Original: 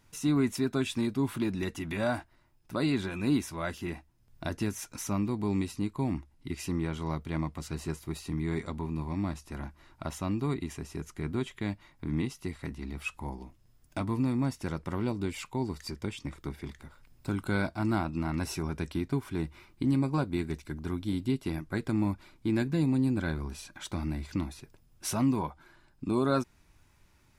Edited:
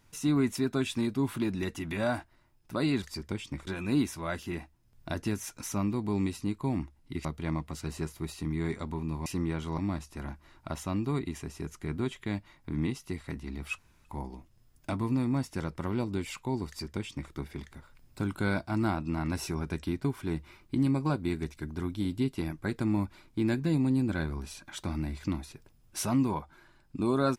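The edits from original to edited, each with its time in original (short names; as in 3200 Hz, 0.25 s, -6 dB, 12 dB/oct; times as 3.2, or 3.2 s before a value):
6.6–7.12 move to 9.13
13.13 insert room tone 0.27 s
15.75–16.4 copy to 3.02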